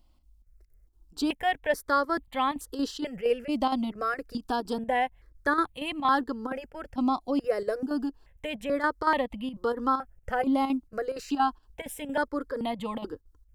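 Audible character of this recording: chopped level 4.3 Hz, depth 60%, duty 80%; notches that jump at a steady rate 2.3 Hz 460–1500 Hz

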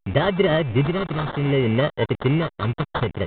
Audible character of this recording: a quantiser's noise floor 6-bit, dither none; phasing stages 2, 0.63 Hz, lowest notch 660–2200 Hz; aliases and images of a low sample rate 2.5 kHz, jitter 0%; A-law

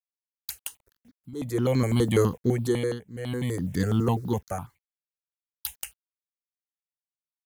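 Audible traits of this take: a quantiser's noise floor 10-bit, dither none; tremolo triangle 0.57 Hz, depth 95%; notches that jump at a steady rate 12 Hz 650–2800 Hz

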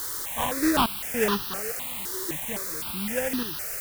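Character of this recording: aliases and images of a low sample rate 2.2 kHz, jitter 20%; random-step tremolo, depth 95%; a quantiser's noise floor 6-bit, dither triangular; notches that jump at a steady rate 3.9 Hz 680–2200 Hz

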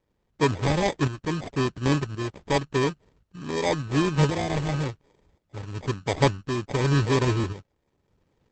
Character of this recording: tremolo saw up 0.93 Hz, depth 65%; aliases and images of a low sample rate 1.4 kHz, jitter 0%; Opus

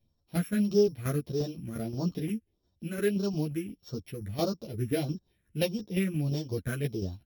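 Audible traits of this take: a buzz of ramps at a fixed pitch in blocks of 8 samples; phasing stages 4, 1.6 Hz, lowest notch 790–2100 Hz; tremolo saw down 5.7 Hz, depth 55%; a shimmering, thickened sound

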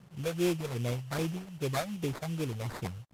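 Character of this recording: a quantiser's noise floor 10-bit, dither none; phasing stages 8, 2.6 Hz, lowest notch 280–2100 Hz; aliases and images of a low sample rate 2.9 kHz, jitter 20%; AAC

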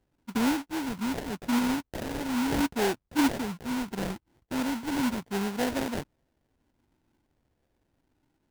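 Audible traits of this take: phasing stages 2, 0.75 Hz, lowest notch 450–1200 Hz; aliases and images of a low sample rate 1.2 kHz, jitter 20%

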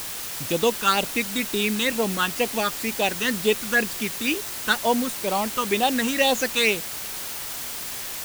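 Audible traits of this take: phasing stages 8, 2.1 Hz, lowest notch 630–1900 Hz; a quantiser's noise floor 6-bit, dither triangular

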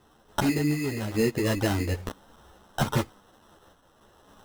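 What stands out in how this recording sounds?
a quantiser's noise floor 10-bit, dither triangular; random-step tremolo; aliases and images of a low sample rate 2.3 kHz, jitter 0%; a shimmering, thickened sound

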